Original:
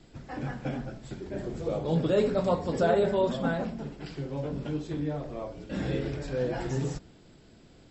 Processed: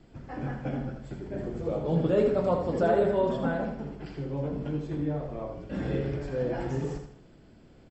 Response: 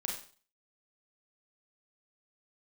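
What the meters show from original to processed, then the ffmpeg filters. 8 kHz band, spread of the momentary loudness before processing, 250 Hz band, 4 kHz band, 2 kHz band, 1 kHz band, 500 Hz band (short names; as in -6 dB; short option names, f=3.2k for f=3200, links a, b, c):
n/a, 13 LU, +0.5 dB, -6.0 dB, -1.5 dB, +0.5 dB, +1.0 dB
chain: -filter_complex "[0:a]highshelf=f=3.1k:g=-10.5,bandreject=f=3.8k:w=14,asplit=2[a][b];[b]aecho=0:1:80|160|240|320:0.447|0.17|0.0645|0.0245[c];[a][c]amix=inputs=2:normalize=0"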